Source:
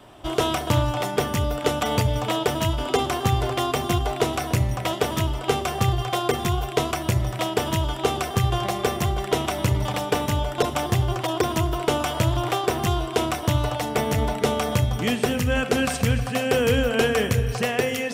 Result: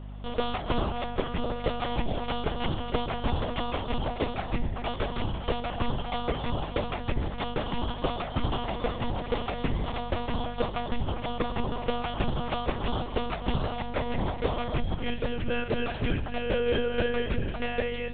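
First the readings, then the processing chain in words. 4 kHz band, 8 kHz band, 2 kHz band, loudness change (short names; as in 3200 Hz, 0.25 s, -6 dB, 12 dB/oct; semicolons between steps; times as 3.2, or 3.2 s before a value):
-8.0 dB, under -40 dB, -7.5 dB, -7.5 dB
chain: monotone LPC vocoder at 8 kHz 240 Hz; hum 50 Hz, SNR 11 dB; gain -6 dB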